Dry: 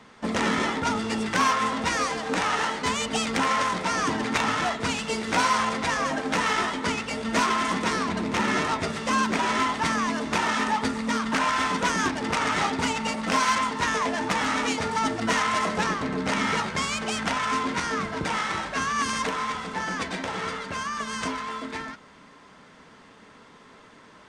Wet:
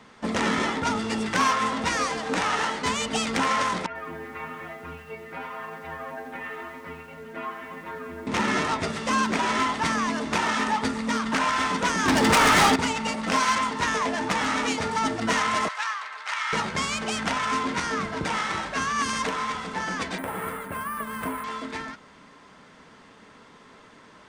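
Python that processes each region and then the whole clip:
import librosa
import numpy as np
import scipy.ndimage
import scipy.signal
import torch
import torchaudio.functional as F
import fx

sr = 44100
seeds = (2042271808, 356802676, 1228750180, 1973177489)

y = fx.chain(x, sr, fx.lowpass(hz=2500.0, slope=24),
    fx.stiff_resonator(f0_hz=80.0, decay_s=0.54, stiffness=0.008),
    fx.echo_crushed(ms=89, feedback_pct=80, bits=8, wet_db=-13.0), at=(3.86, 8.27))
y = fx.chain(y, sr, fx.high_shelf(hz=6500.0, db=8.0),
    fx.leveller(passes=3), at=(12.08, 12.76))
y = fx.chain(y, sr, fx.highpass(hz=1000.0, slope=24),
    fx.high_shelf(hz=5600.0, db=-8.5), at=(15.68, 16.53))
y = fx.chain(y, sr, fx.lowpass(hz=2000.0, slope=12),
    fx.resample_bad(factor=4, down='none', up='hold'), at=(20.18, 21.44))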